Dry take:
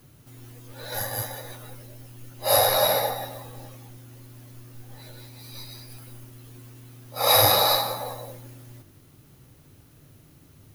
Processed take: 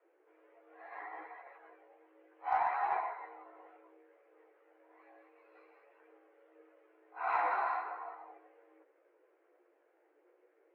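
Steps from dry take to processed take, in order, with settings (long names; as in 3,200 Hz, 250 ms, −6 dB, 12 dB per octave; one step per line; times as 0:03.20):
single-sideband voice off tune +200 Hz 180–2,100 Hz
multi-voice chorus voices 2, 0.68 Hz, delay 15 ms, depth 1.5 ms
harmonic generator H 4 −32 dB, 6 −37 dB, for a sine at −12 dBFS
level −8 dB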